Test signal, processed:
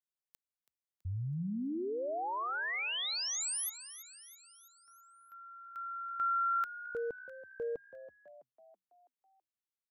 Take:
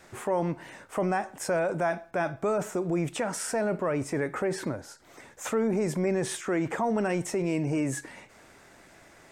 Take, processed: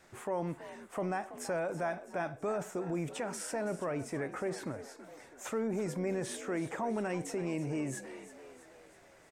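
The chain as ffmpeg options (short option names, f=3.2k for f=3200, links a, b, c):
-filter_complex "[0:a]asplit=6[a][b][c][d][e][f];[b]adelay=328,afreqshift=61,volume=-14dB[g];[c]adelay=656,afreqshift=122,volume=-19.4dB[h];[d]adelay=984,afreqshift=183,volume=-24.7dB[i];[e]adelay=1312,afreqshift=244,volume=-30.1dB[j];[f]adelay=1640,afreqshift=305,volume=-35.4dB[k];[a][g][h][i][j][k]amix=inputs=6:normalize=0,volume=-7.5dB"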